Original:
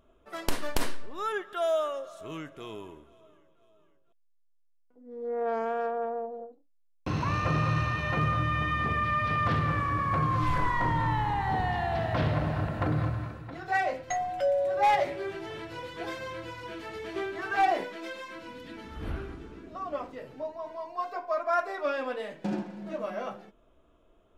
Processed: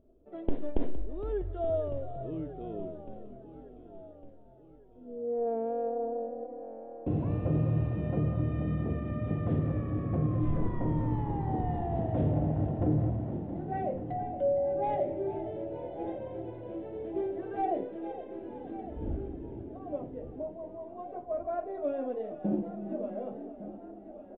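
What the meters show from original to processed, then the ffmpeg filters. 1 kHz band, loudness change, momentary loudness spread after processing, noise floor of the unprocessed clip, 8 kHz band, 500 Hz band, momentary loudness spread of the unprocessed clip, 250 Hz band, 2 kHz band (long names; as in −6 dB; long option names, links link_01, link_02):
−9.5 dB, −3.0 dB, 14 LU, −64 dBFS, below −30 dB, −1.0 dB, 14 LU, +3.0 dB, −21.5 dB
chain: -filter_complex "[0:a]asplit=2[link_01][link_02];[link_02]asplit=7[link_03][link_04][link_05][link_06][link_07][link_08][link_09];[link_03]adelay=462,afreqshift=41,volume=-12.5dB[link_10];[link_04]adelay=924,afreqshift=82,volume=-17.1dB[link_11];[link_05]adelay=1386,afreqshift=123,volume=-21.7dB[link_12];[link_06]adelay=1848,afreqshift=164,volume=-26.2dB[link_13];[link_07]adelay=2310,afreqshift=205,volume=-30.8dB[link_14];[link_08]adelay=2772,afreqshift=246,volume=-35.4dB[link_15];[link_09]adelay=3234,afreqshift=287,volume=-40dB[link_16];[link_10][link_11][link_12][link_13][link_14][link_15][link_16]amix=inputs=7:normalize=0[link_17];[link_01][link_17]amix=inputs=2:normalize=0,aresample=8000,aresample=44100,firequalizer=gain_entry='entry(180,0);entry(290,4);entry(720,-5);entry(1100,-22)':delay=0.05:min_phase=1,asplit=2[link_18][link_19];[link_19]aecho=0:1:1155|2310|3465|4620:0.188|0.0866|0.0399|0.0183[link_20];[link_18][link_20]amix=inputs=2:normalize=0"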